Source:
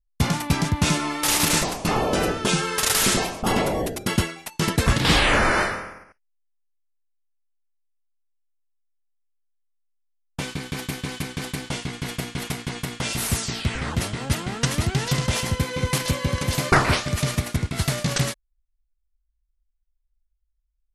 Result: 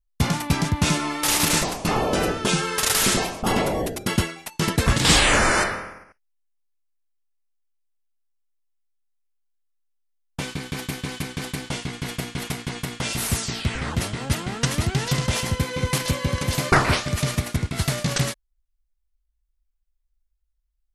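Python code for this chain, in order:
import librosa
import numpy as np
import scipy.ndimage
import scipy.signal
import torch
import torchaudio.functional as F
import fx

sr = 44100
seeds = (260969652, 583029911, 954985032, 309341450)

y = fx.peak_eq(x, sr, hz=7700.0, db=12.0, octaves=1.0, at=(4.97, 5.64))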